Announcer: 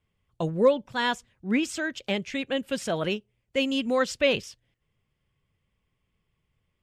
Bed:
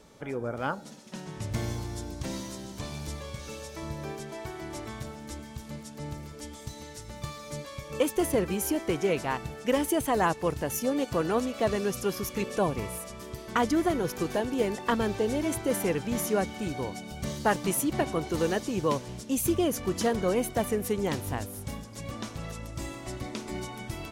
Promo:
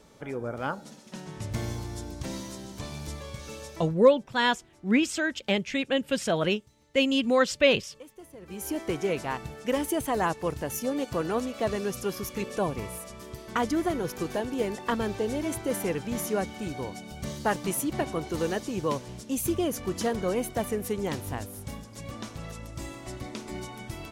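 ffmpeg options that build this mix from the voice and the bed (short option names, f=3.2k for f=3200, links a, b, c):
-filter_complex "[0:a]adelay=3400,volume=2dB[a];[1:a]volume=19.5dB,afade=t=out:st=3.69:d=0.26:silence=0.0891251,afade=t=in:st=8.4:d=0.41:silence=0.1[b];[a][b]amix=inputs=2:normalize=0"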